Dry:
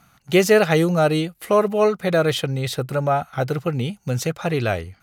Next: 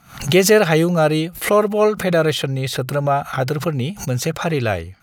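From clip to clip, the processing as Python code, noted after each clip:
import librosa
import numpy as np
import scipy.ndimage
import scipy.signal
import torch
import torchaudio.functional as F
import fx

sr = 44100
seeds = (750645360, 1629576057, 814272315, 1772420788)

y = fx.pre_swell(x, sr, db_per_s=130.0)
y = F.gain(torch.from_numpy(y), 2.0).numpy()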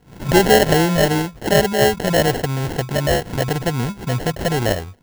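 y = scipy.signal.sosfilt(scipy.signal.butter(4, 7100.0, 'lowpass', fs=sr, output='sos'), x)
y = fx.sample_hold(y, sr, seeds[0], rate_hz=1200.0, jitter_pct=0)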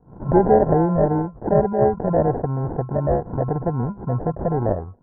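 y = scipy.signal.sosfilt(scipy.signal.butter(6, 1200.0, 'lowpass', fs=sr, output='sos'), x)
y = F.gain(torch.from_numpy(y), -1.5).numpy()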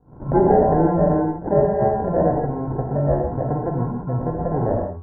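y = fx.rev_gated(x, sr, seeds[1], gate_ms=190, shape='flat', drr_db=0.0)
y = F.gain(torch.from_numpy(y), -2.5).numpy()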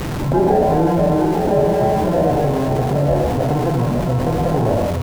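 y = x + 0.5 * 10.0 ** (-27.5 / 20.0) * np.sign(x)
y = y + 10.0 ** (-10.0 / 20.0) * np.pad(y, (int(865 * sr / 1000.0), 0))[:len(y)]
y = fx.env_flatten(y, sr, amount_pct=50)
y = F.gain(torch.from_numpy(y), -1.0).numpy()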